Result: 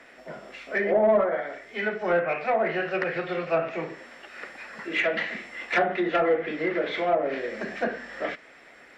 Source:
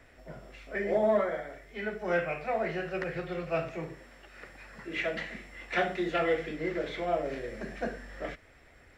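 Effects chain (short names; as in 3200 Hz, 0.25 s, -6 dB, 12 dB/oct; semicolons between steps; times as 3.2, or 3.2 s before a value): treble ducked by the level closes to 1200 Hz, closed at -24.5 dBFS; resonant low shelf 130 Hz -13 dB, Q 1.5; overdrive pedal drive 11 dB, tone 4900 Hz, clips at -14.5 dBFS; gain +3.5 dB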